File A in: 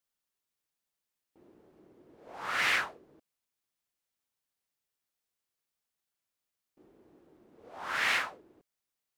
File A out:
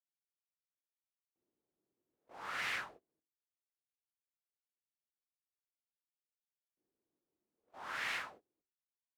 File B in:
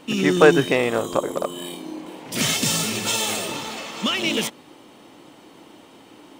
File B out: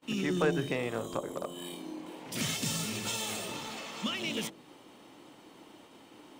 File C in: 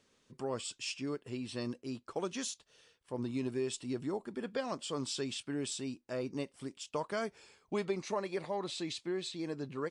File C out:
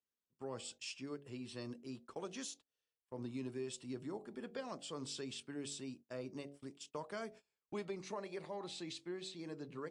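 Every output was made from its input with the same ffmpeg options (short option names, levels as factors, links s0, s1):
-filter_complex "[0:a]acrossover=split=200[s0][s1];[s1]acompressor=threshold=0.0178:ratio=1.5[s2];[s0][s2]amix=inputs=2:normalize=0,bandreject=f=47.19:t=h:w=4,bandreject=f=94.38:t=h:w=4,bandreject=f=141.57:t=h:w=4,bandreject=f=188.76:t=h:w=4,bandreject=f=235.95:t=h:w=4,bandreject=f=283.14:t=h:w=4,bandreject=f=330.33:t=h:w=4,bandreject=f=377.52:t=h:w=4,bandreject=f=424.71:t=h:w=4,bandreject=f=471.9:t=h:w=4,bandreject=f=519.09:t=h:w=4,bandreject=f=566.28:t=h:w=4,bandreject=f=613.47:t=h:w=4,bandreject=f=660.66:t=h:w=4,bandreject=f=707.85:t=h:w=4,bandreject=f=755.04:t=h:w=4,bandreject=f=802.23:t=h:w=4,agate=range=0.0708:threshold=0.00355:ratio=16:detection=peak,volume=0.473"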